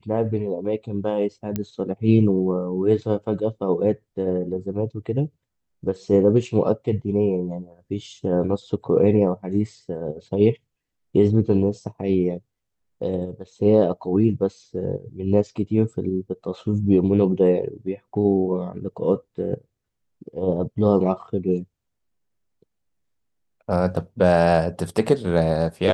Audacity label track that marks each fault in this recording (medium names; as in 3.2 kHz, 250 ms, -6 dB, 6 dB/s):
1.560000	1.560000	pop -12 dBFS